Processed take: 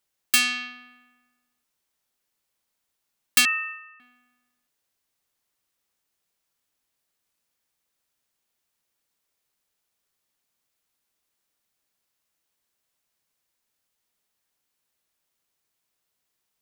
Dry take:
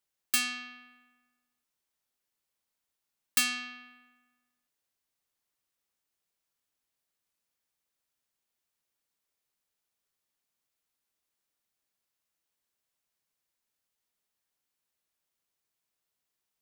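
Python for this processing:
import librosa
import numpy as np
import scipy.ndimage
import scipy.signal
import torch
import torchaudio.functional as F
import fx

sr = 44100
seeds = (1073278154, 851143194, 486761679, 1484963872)

y = fx.sine_speech(x, sr, at=(3.45, 4.0))
y = fx.dynamic_eq(y, sr, hz=2600.0, q=0.75, threshold_db=-44.0, ratio=4.0, max_db=4)
y = y * librosa.db_to_amplitude(6.0)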